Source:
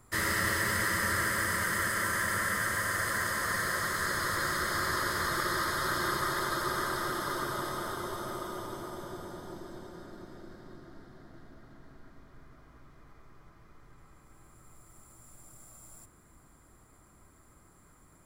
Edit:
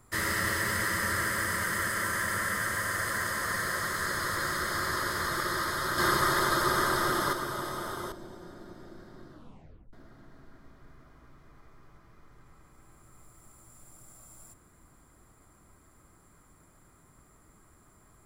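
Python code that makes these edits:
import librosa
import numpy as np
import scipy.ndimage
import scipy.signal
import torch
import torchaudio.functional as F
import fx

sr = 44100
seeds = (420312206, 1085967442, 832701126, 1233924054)

y = fx.edit(x, sr, fx.clip_gain(start_s=5.98, length_s=1.35, db=5.5),
    fx.cut(start_s=8.12, length_s=1.52),
    fx.tape_stop(start_s=10.83, length_s=0.62), tone=tone)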